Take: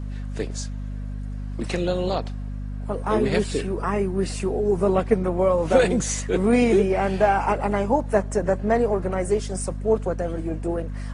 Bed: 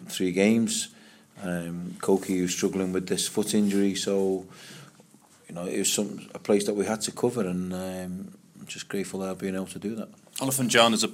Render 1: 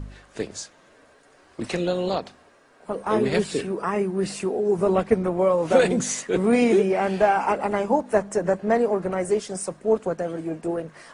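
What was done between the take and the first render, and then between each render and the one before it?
de-hum 50 Hz, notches 5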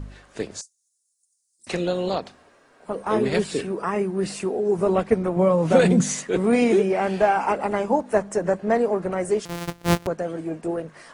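0.61–1.67 s: inverse Chebyshev high-pass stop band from 2.8 kHz, stop band 50 dB; 5.36–6.29 s: peaking EQ 170 Hz +10.5 dB; 9.45–10.07 s: sorted samples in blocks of 256 samples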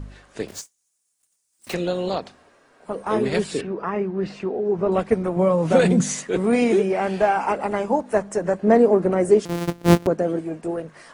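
0.48–1.75 s: block-companded coder 3-bit; 3.61–4.92 s: distance through air 210 m; 8.63–10.39 s: peaking EQ 290 Hz +9 dB 2 oct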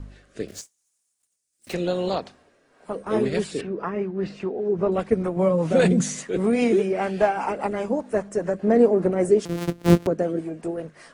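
rotary cabinet horn 0.85 Hz, later 5 Hz, at 2.50 s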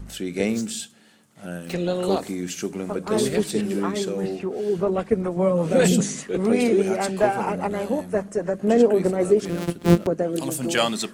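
add bed -3 dB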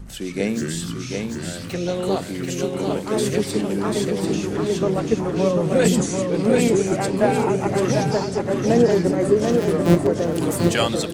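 ever faster or slower copies 83 ms, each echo -5 st, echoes 3, each echo -6 dB; feedback delay 740 ms, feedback 28%, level -4.5 dB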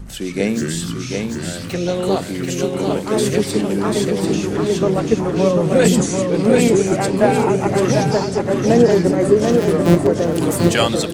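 trim +4 dB; peak limiter -1 dBFS, peak gain reduction 2 dB

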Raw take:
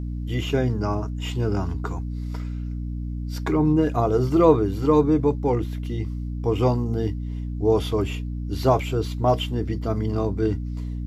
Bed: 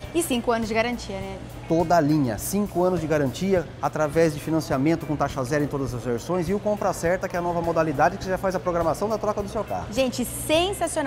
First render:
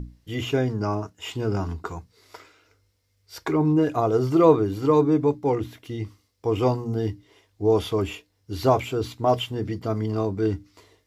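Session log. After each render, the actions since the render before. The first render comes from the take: hum notches 60/120/180/240/300 Hz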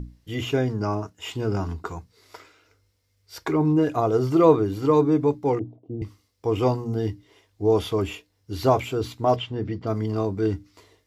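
5.59–6.02 s: elliptic band-pass 110–720 Hz; 9.36–9.87 s: distance through air 150 m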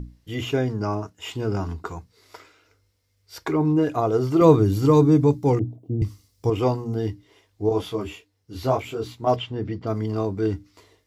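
4.41–6.50 s: tone controls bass +10 dB, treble +10 dB; 7.69–9.27 s: detune thickener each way 29 cents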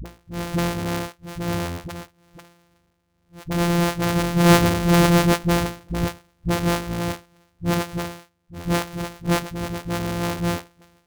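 sorted samples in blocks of 256 samples; phase dispersion highs, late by 52 ms, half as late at 320 Hz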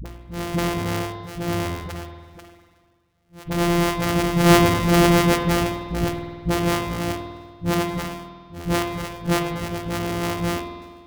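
spring tank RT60 1.6 s, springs 49 ms, chirp 35 ms, DRR 3 dB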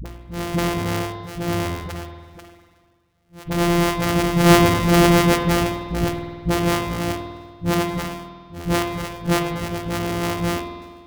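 trim +1.5 dB; peak limiter -2 dBFS, peak gain reduction 1.5 dB

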